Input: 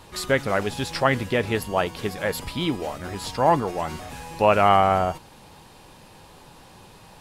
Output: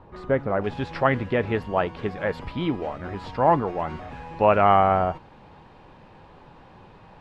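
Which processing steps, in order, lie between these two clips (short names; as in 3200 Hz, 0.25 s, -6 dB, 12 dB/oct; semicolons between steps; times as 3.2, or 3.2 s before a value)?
LPF 1100 Hz 12 dB/oct, from 0.64 s 2100 Hz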